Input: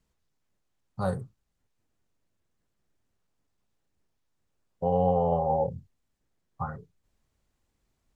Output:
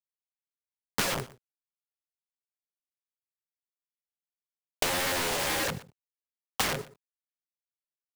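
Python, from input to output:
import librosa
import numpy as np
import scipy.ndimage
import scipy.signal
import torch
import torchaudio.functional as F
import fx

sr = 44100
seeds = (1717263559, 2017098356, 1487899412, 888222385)

p1 = scipy.signal.sosfilt(scipy.signal.butter(2, 300.0, 'highpass', fs=sr, output='sos'), x)
p2 = fx.tilt_shelf(p1, sr, db=4.5, hz=800.0)
p3 = p2 + 0.73 * np.pad(p2, (int(7.5 * sr / 1000.0), 0))[:len(p2)]
p4 = fx.rider(p3, sr, range_db=3, speed_s=2.0)
p5 = fx.leveller(p4, sr, passes=3)
p6 = (np.mod(10.0 ** (23.5 / 20.0) * p5 + 1.0, 2.0) - 1.0) / 10.0 ** (23.5 / 20.0)
p7 = fx.quant_dither(p6, sr, seeds[0], bits=8, dither='none')
p8 = 10.0 ** (-26.0 / 20.0) * np.tanh(p7 / 10.0 ** (-26.0 / 20.0))
p9 = p8 + fx.echo_single(p8, sr, ms=121, db=-22.5, dry=0)
p10 = fx.band_squash(p9, sr, depth_pct=100)
y = F.gain(torch.from_numpy(p10), 1.5).numpy()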